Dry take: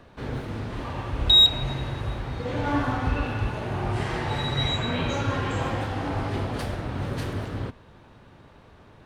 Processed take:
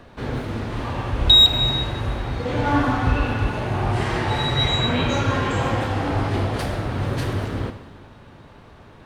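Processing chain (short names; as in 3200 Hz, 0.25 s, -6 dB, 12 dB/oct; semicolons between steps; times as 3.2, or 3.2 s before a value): non-linear reverb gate 0.5 s falling, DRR 9 dB; gain +5 dB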